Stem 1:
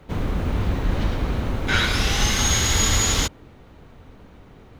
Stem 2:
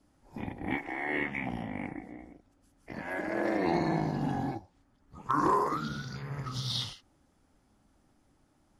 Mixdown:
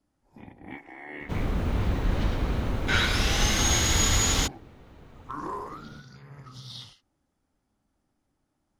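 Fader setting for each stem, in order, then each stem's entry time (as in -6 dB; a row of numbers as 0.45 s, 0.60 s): -3.5 dB, -8.5 dB; 1.20 s, 0.00 s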